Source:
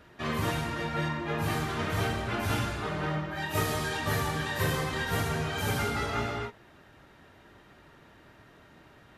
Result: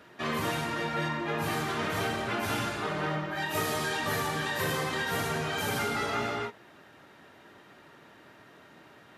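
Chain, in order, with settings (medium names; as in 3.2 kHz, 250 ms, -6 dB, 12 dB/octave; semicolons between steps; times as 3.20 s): Bessel high-pass 190 Hz, order 2; in parallel at +2 dB: peak limiter -25.5 dBFS, peak gain reduction 8 dB; on the sum: trim -4.5 dB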